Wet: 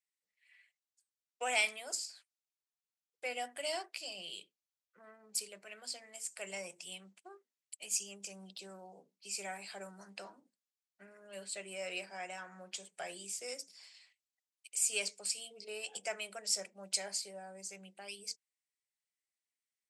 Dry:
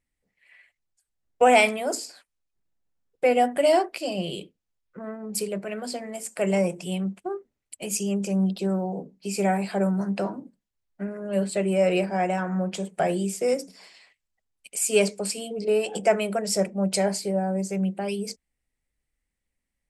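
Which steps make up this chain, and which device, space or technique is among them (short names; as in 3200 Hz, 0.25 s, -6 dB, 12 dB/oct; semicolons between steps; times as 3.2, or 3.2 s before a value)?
piezo pickup straight into a mixer (LPF 6300 Hz 12 dB/oct; differentiator)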